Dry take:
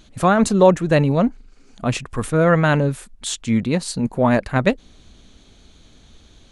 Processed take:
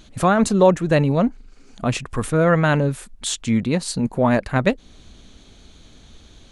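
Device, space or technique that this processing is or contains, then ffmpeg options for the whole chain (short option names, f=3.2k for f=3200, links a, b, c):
parallel compression: -filter_complex "[0:a]asplit=2[a][b];[b]acompressor=threshold=-25dB:ratio=6,volume=-3dB[c];[a][c]amix=inputs=2:normalize=0,volume=-2.5dB"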